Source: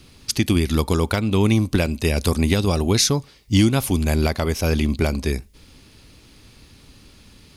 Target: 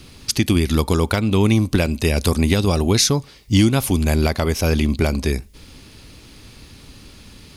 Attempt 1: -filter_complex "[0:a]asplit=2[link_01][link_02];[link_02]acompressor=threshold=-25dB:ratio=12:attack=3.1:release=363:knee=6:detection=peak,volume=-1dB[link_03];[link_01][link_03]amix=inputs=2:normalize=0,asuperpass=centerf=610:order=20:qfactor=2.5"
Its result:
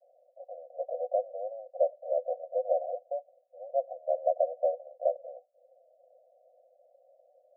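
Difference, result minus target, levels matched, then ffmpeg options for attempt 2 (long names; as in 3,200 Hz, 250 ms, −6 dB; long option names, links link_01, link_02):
500 Hz band +7.5 dB
-filter_complex "[0:a]asplit=2[link_01][link_02];[link_02]acompressor=threshold=-25dB:ratio=12:attack=3.1:release=363:knee=6:detection=peak,volume=-1dB[link_03];[link_01][link_03]amix=inputs=2:normalize=0"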